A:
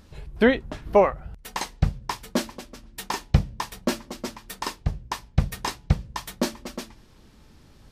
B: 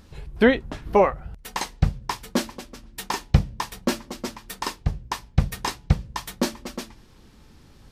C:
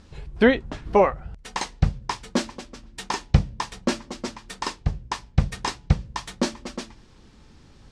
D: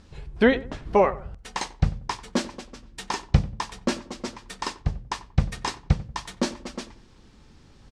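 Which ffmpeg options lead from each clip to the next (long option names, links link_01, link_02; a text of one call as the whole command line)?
ffmpeg -i in.wav -af "bandreject=frequency=620:width=17,volume=1.5dB" out.wav
ffmpeg -i in.wav -af "lowpass=frequency=8600:width=0.5412,lowpass=frequency=8600:width=1.3066" out.wav
ffmpeg -i in.wav -filter_complex "[0:a]asplit=2[link_01][link_02];[link_02]adelay=92,lowpass=frequency=1300:poles=1,volume=-16dB,asplit=2[link_03][link_04];[link_04]adelay=92,lowpass=frequency=1300:poles=1,volume=0.3,asplit=2[link_05][link_06];[link_06]adelay=92,lowpass=frequency=1300:poles=1,volume=0.3[link_07];[link_01][link_03][link_05][link_07]amix=inputs=4:normalize=0,volume=-1.5dB" out.wav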